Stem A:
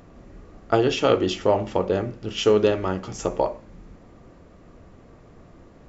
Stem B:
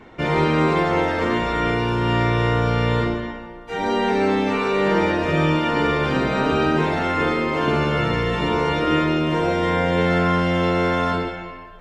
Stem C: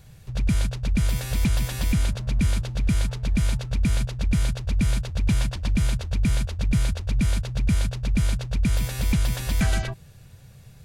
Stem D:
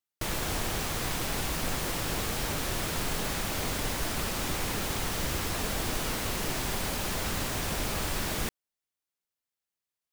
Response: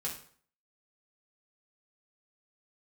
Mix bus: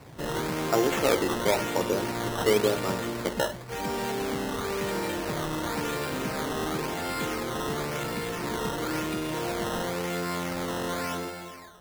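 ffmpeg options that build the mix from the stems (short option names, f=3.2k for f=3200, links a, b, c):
-filter_complex "[0:a]volume=-5dB[a];[1:a]aeval=exprs='(tanh(11.2*val(0)+0.4)-tanh(0.4))/11.2':c=same,volume=-5.5dB[b];[2:a]acompressor=threshold=-38dB:ratio=2,volume=-0.5dB[c];[3:a]adelay=1450,volume=-19dB[d];[a][b][c][d]amix=inputs=4:normalize=0,highpass=81,acrossover=split=160[e][f];[e]acompressor=threshold=-46dB:ratio=4[g];[g][f]amix=inputs=2:normalize=0,acrusher=samples=13:mix=1:aa=0.000001:lfo=1:lforange=13:lforate=0.95"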